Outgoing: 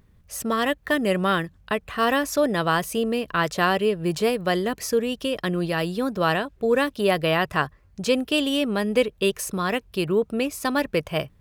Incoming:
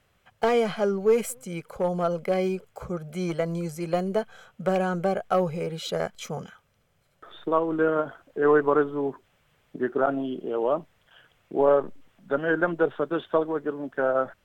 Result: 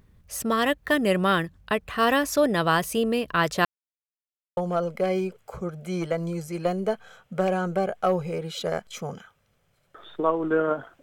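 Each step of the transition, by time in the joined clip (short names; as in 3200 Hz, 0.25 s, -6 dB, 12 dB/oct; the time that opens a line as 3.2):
outgoing
3.65–4.57 mute
4.57 switch to incoming from 1.85 s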